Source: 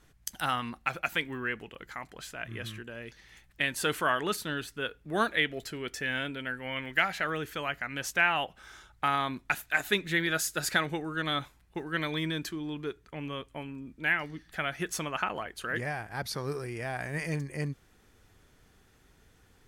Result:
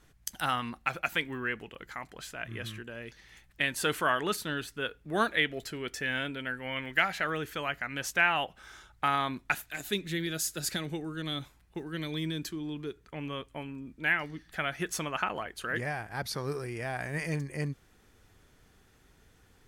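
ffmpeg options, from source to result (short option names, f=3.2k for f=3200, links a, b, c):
-filter_complex "[0:a]asettb=1/sr,asplit=3[a][b][c];[a]atrim=end=9.654[d];[b]atrim=start=9.65:end=13.01,asetpts=PTS-STARTPTS,afade=t=in:d=0.004:c=qsin,afade=t=out:st=3.356:d=0.004:c=qsin,acrossover=split=460|3000[e][f][g];[f]acompressor=threshold=-53dB:ratio=2:attack=3.2:release=140:knee=2.83:detection=peak[h];[e][h][g]amix=inputs=3:normalize=0[i];[c]atrim=start=13.006[j];[d][i]acrossfade=d=0.004:c1=hsin:c2=qsin[k];[k][j]acrossfade=d=0.004:c1=qsin:c2=hsin"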